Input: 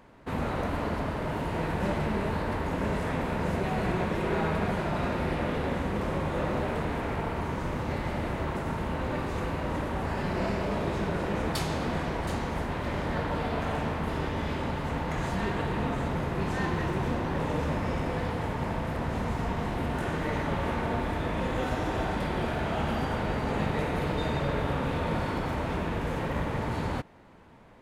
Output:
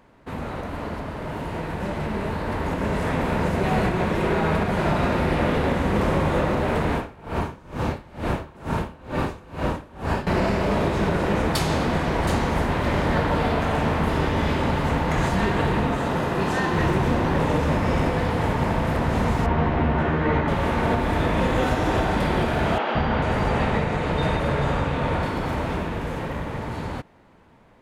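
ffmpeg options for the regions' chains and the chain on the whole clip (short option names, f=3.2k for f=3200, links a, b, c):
-filter_complex "[0:a]asettb=1/sr,asplit=3[a][b][c];[a]atrim=end=6.944[d];[b]atrim=start=6.94:end=10.27,asetpts=PTS-STARTPTS,afade=t=in:d=0.004:c=qsin,afade=t=out:st=3.326:d=0.004:c=qsin,bandreject=f=2k:w=12,aeval=exprs='val(0)*pow(10,-25*(0.5-0.5*cos(2*PI*2.2*n/s))/20)':c=same[e];[c]atrim=start=10.266[f];[d][e]acrossfade=d=0.004:c1=hsin:c2=qsin[g];[g][f]acrossfade=d=0.004:c1=qsin:c2=hsin,asettb=1/sr,asplit=3[h][i][j];[h]atrim=end=15.964[k];[i]atrim=start=15.96:end=16.75,asetpts=PTS-STARTPTS,afade=t=in:d=0.004:c=qsin,afade=t=out:st=0.786:d=0.004:c=qsin,lowshelf=f=120:g=-11.5,bandreject=f=2.2k:w=12[l];[j]atrim=start=16.746[m];[k][l]acrossfade=d=0.004:c1=hsin:c2=qsin[n];[n][m]acrossfade=d=0.004:c1=qsin:c2=hsin,asettb=1/sr,asplit=3[o][p][q];[o]atrim=end=19.464[r];[p]atrim=start=19.46:end=20.48,asetpts=PTS-STARTPTS,afade=t=in:d=0.004:c=qsin,afade=t=out:st=1.016:d=0.004:c=qsin,lowpass=2.6k,asplit=2[s][t];[t]adelay=13,volume=-3.5dB[u];[s][u]amix=inputs=2:normalize=0,atrim=end_sample=44982[v];[q]atrim=start=20.476[w];[r][v]acrossfade=d=0.004:c1=hsin:c2=qsin[x];[x][w]acrossfade=d=0.004:c1=qsin:c2=hsin,asettb=1/sr,asplit=3[y][z][aa];[y]atrim=end=22.784[ab];[z]atrim=start=22.78:end=25.23,asetpts=PTS-STARTPTS,afade=t=in:d=0.004:c=qsin,afade=t=out:st=2.446:d=0.004:c=qsin,lowpass=9k,acrossover=split=300|4800[ac][ad][ae];[ac]adelay=170[af];[ae]adelay=440[ag];[af][ad][ag]amix=inputs=3:normalize=0,atrim=end_sample=108045[ah];[aa]atrim=start=25.226[ai];[ab][ah]acrossfade=d=0.004:c1=hsin:c2=qsin[aj];[aj][ai]acrossfade=d=0.004:c1=qsin:c2=hsin,alimiter=limit=-20.5dB:level=0:latency=1:release=259,dynaudnorm=f=320:g=17:m=9dB"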